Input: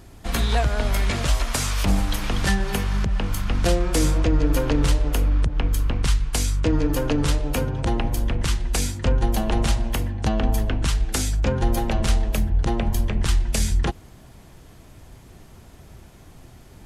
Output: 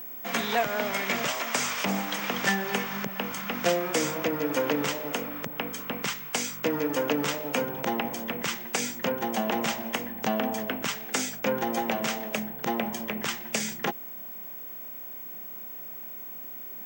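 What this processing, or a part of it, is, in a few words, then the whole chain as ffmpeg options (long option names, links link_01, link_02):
old television with a line whistle: -af "highpass=frequency=210:width=0.5412,highpass=frequency=210:width=1.3066,equalizer=frequency=320:width_type=q:width=4:gain=-8,equalizer=frequency=2100:width_type=q:width=4:gain=4,equalizer=frequency=4200:width_type=q:width=4:gain=-8,lowpass=frequency=7600:width=0.5412,lowpass=frequency=7600:width=1.3066,aeval=exprs='val(0)+0.0141*sin(2*PI*15734*n/s)':channel_layout=same"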